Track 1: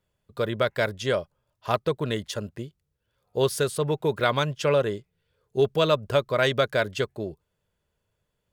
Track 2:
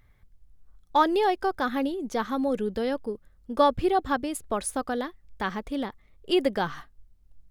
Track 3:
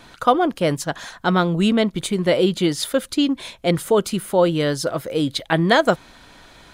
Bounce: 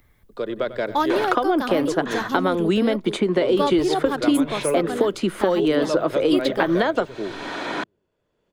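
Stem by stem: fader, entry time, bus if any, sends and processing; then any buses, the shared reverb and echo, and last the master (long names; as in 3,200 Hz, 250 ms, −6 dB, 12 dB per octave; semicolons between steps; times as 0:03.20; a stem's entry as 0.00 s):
−9.0 dB, 0.00 s, bus A, no send, echo send −16 dB, de-essing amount 70%; tilt shelving filter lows +4.5 dB, about 730 Hz
−8.0 dB, 0.00 s, no bus, no send, no echo send, high-shelf EQ 9,100 Hz +10.5 dB
−2.5 dB, 1.10 s, bus A, no send, no echo send, parametric band 5,400 Hz −6.5 dB 2.2 octaves; multiband upward and downward compressor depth 70%
bus A: 0.0 dB, three-way crossover with the lows and the highs turned down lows −22 dB, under 210 Hz, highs −19 dB, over 7,200 Hz; downward compressor, threshold −23 dBFS, peak gain reduction 9.5 dB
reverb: not used
echo: repeating echo 95 ms, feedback 55%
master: automatic gain control gain up to 6 dB; parametric band 320 Hz +4.5 dB 0.49 octaves; multiband upward and downward compressor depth 40%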